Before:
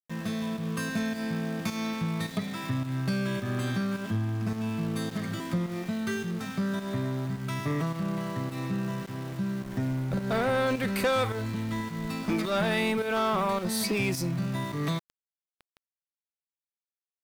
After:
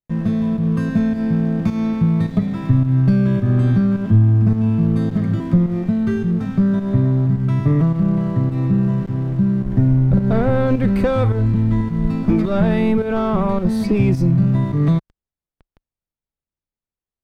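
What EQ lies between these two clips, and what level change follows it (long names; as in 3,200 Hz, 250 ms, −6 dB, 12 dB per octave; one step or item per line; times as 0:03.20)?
spectral tilt −4.5 dB per octave
+3.5 dB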